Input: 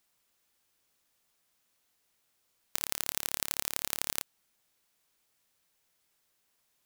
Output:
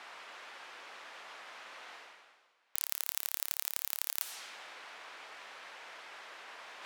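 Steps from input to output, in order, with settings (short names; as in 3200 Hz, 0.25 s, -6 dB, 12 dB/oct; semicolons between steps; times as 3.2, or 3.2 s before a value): low-pass opened by the level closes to 1900 Hz, open at -46.5 dBFS; reverse; upward compressor, threshold -39 dBFS; reverse; wrapped overs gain 18 dB; HPF 650 Hz 12 dB/oct; gain +11.5 dB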